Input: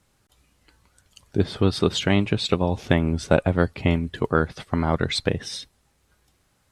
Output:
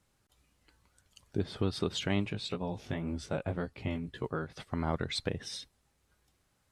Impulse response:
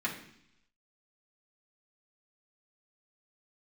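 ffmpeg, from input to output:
-filter_complex "[0:a]alimiter=limit=-10.5dB:level=0:latency=1:release=199,asplit=3[link_01][link_02][link_03];[link_01]afade=type=out:start_time=2.3:duration=0.02[link_04];[link_02]flanger=delay=15.5:depth=4.7:speed=1.9,afade=type=in:start_time=2.3:duration=0.02,afade=type=out:start_time=4.52:duration=0.02[link_05];[link_03]afade=type=in:start_time=4.52:duration=0.02[link_06];[link_04][link_05][link_06]amix=inputs=3:normalize=0,volume=-8dB"

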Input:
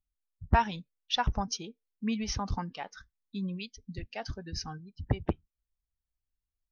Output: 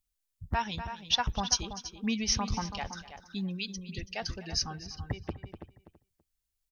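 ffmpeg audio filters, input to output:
ffmpeg -i in.wav -filter_complex "[0:a]asplit=2[link_01][link_02];[link_02]aecho=0:1:247:0.133[link_03];[link_01][link_03]amix=inputs=2:normalize=0,alimiter=limit=-20dB:level=0:latency=1:release=231,highshelf=frequency=2800:gain=10.5,asplit=2[link_04][link_05];[link_05]adelay=330,lowpass=frequency=3300:poles=1,volume=-10dB,asplit=2[link_06][link_07];[link_07]adelay=330,lowpass=frequency=3300:poles=1,volume=0.16[link_08];[link_06][link_08]amix=inputs=2:normalize=0[link_09];[link_04][link_09]amix=inputs=2:normalize=0" out.wav

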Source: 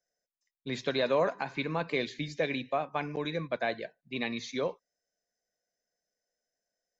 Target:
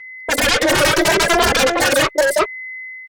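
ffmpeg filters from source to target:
ffmpeg -i in.wav -filter_complex "[0:a]afwtdn=0.00631,lowshelf=frequency=300:width_type=q:width=3:gain=7.5,acrossover=split=210|900[link_01][link_02][link_03];[link_01]acompressor=threshold=-39dB:ratio=4[link_04];[link_02]acompressor=threshold=-27dB:ratio=4[link_05];[link_03]acompressor=threshold=-40dB:ratio=4[link_06];[link_04][link_05][link_06]amix=inputs=3:normalize=0,atempo=0.97,aeval=exprs='val(0)+0.00112*sin(2*PI*870*n/s)':channel_layout=same,aecho=1:1:862:0.668,aeval=exprs='0.141*sin(PI/2*5.62*val(0)/0.141)':channel_layout=same,asetrate=103194,aresample=44100,asplit=2[link_07][link_08];[link_08]adelay=2.6,afreqshift=0.82[link_09];[link_07][link_09]amix=inputs=2:normalize=1,volume=8.5dB" out.wav

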